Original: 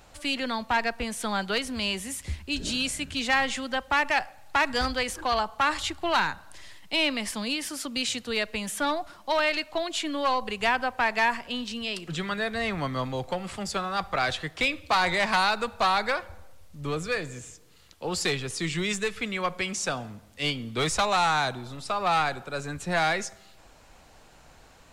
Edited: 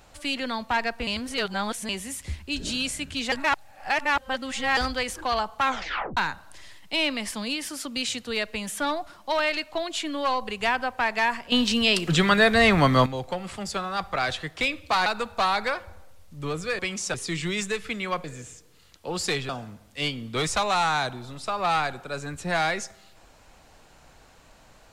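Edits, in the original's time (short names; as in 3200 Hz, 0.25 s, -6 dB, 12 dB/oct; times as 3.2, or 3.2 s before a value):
1.07–1.89 reverse
3.32–4.77 reverse
5.63 tape stop 0.54 s
11.52–13.06 gain +11 dB
15.06–15.48 cut
17.21–18.46 swap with 19.56–19.91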